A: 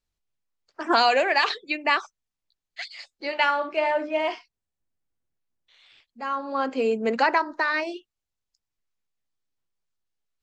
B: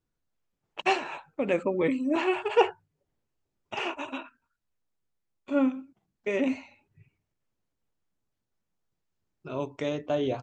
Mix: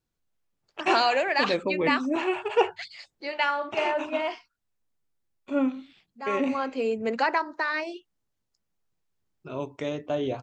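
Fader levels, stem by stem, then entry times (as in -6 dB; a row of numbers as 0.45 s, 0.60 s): -3.5 dB, -0.5 dB; 0.00 s, 0.00 s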